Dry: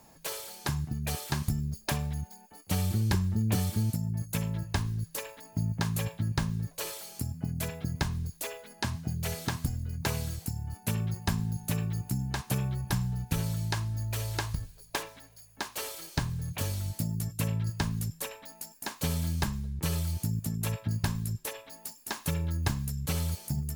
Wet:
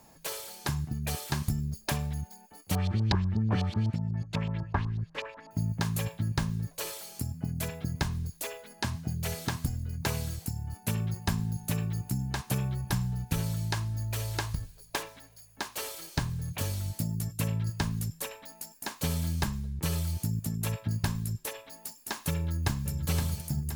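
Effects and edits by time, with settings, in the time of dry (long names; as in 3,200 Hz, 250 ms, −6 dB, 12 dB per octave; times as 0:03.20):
0:02.75–0:05.51: auto-filter low-pass saw up 8.1 Hz 790–4,600 Hz
0:22.33–0:22.89: delay throw 520 ms, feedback 50%, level −7.5 dB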